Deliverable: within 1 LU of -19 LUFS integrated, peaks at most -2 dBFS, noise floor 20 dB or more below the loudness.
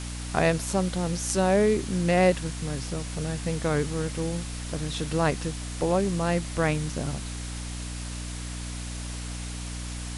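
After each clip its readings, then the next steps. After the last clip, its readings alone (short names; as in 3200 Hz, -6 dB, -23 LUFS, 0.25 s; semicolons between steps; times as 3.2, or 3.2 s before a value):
hum 60 Hz; harmonics up to 300 Hz; hum level -33 dBFS; noise floor -35 dBFS; noise floor target -48 dBFS; loudness -28.0 LUFS; peak -8.5 dBFS; loudness target -19.0 LUFS
-> notches 60/120/180/240/300 Hz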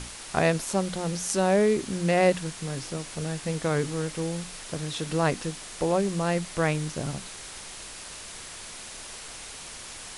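hum none; noise floor -42 dBFS; noise floor target -48 dBFS
-> denoiser 6 dB, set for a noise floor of -42 dBFS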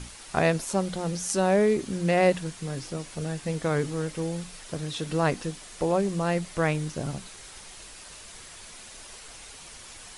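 noise floor -46 dBFS; noise floor target -48 dBFS
-> denoiser 6 dB, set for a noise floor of -46 dBFS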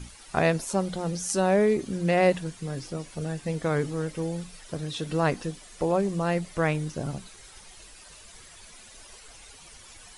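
noise floor -50 dBFS; loudness -27.5 LUFS; peak -9.5 dBFS; loudness target -19.0 LUFS
-> gain +8.5 dB; limiter -2 dBFS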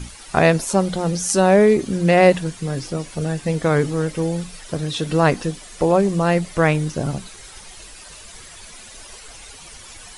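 loudness -19.0 LUFS; peak -2.0 dBFS; noise floor -41 dBFS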